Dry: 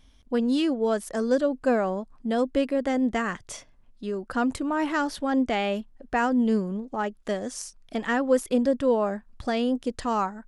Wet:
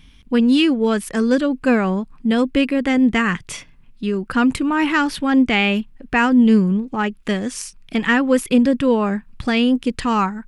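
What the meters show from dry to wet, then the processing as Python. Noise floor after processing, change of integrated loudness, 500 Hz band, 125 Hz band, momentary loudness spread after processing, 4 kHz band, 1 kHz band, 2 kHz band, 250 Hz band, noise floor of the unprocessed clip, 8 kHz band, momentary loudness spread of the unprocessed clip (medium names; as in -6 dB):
-47 dBFS, +8.0 dB, +3.5 dB, +12.5 dB, 9 LU, +12.0 dB, +5.5 dB, +11.0 dB, +10.0 dB, -56 dBFS, +6.5 dB, 10 LU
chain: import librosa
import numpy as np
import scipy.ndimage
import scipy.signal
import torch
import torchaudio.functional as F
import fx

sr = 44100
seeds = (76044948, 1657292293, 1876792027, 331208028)

y = fx.graphic_eq_15(x, sr, hz=(160, 630, 2500, 6300), db=(8, -10, 8, -4))
y = y * 10.0 ** (8.5 / 20.0)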